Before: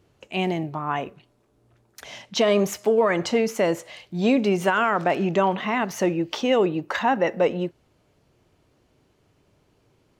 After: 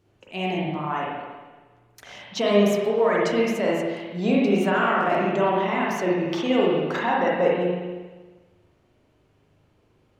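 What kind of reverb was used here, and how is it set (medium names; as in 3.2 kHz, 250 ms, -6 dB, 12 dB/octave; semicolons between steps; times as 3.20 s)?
spring tank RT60 1.3 s, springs 39/59 ms, chirp 70 ms, DRR -4.5 dB; trim -5.5 dB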